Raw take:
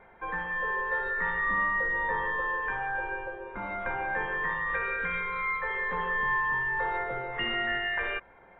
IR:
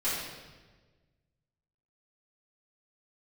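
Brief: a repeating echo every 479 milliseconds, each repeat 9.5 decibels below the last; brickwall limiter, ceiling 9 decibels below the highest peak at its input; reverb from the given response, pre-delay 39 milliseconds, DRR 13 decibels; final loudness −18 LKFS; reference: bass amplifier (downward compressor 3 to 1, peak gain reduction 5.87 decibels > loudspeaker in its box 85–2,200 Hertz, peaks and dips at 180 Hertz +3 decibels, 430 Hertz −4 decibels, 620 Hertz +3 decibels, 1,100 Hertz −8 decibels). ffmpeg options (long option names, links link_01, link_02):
-filter_complex "[0:a]alimiter=level_in=3dB:limit=-24dB:level=0:latency=1,volume=-3dB,aecho=1:1:479|958|1437|1916:0.335|0.111|0.0365|0.012,asplit=2[link_01][link_02];[1:a]atrim=start_sample=2205,adelay=39[link_03];[link_02][link_03]afir=irnorm=-1:irlink=0,volume=-21.5dB[link_04];[link_01][link_04]amix=inputs=2:normalize=0,acompressor=threshold=-36dB:ratio=3,highpass=frequency=85:width=0.5412,highpass=frequency=85:width=1.3066,equalizer=frequency=180:width_type=q:width=4:gain=3,equalizer=frequency=430:width_type=q:width=4:gain=-4,equalizer=frequency=620:width_type=q:width=4:gain=3,equalizer=frequency=1100:width_type=q:width=4:gain=-8,lowpass=frequency=2200:width=0.5412,lowpass=frequency=2200:width=1.3066,volume=20.5dB"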